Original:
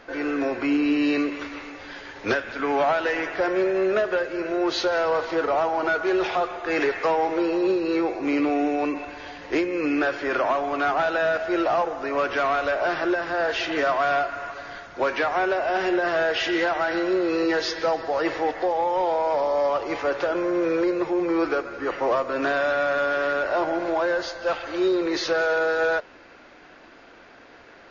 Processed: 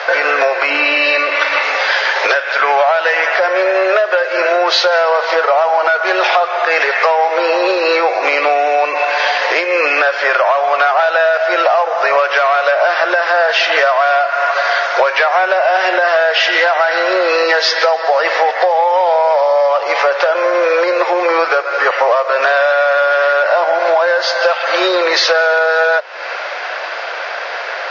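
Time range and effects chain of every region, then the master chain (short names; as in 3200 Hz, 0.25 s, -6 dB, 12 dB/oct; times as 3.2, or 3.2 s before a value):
0.7–1.63 LPF 5100 Hz + comb 3.4 ms, depth 53% + flutter echo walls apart 9.1 m, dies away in 0.28 s
whole clip: elliptic band-pass 560–5500 Hz, stop band 40 dB; compressor 10:1, threshold -38 dBFS; maximiser +29 dB; gain -1 dB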